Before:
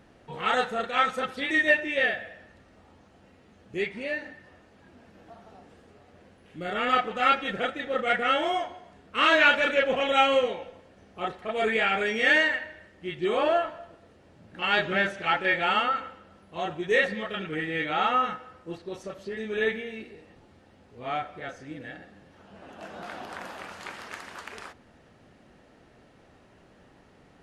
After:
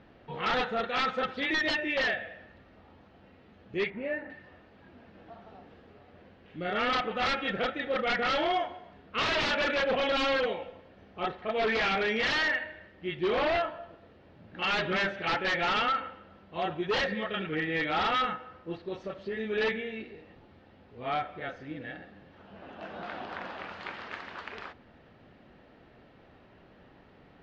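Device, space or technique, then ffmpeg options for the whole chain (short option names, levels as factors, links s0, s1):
synthesiser wavefolder: -filter_complex "[0:a]aeval=exprs='0.0794*(abs(mod(val(0)/0.0794+3,4)-2)-1)':c=same,lowpass=f=4200:w=0.5412,lowpass=f=4200:w=1.3066,asettb=1/sr,asplit=3[s0][s1][s2];[s0]atrim=end=3.904[s3];[s1]atrim=start=3.9:end=4.3,asetpts=PTS-STARTPTS,afade=t=in:d=0.004:c=qsin,afade=t=out:st=0.396:d=0.004:c=qsin,lowpass=1600[s4];[s2]atrim=start=4.296[s5];[s3][s4]acrossfade=d=0.004:c1=hsin:c2=qsin[s6];[s6][s5]acrossfade=d=0.004:c1=qsin:c2=hsin"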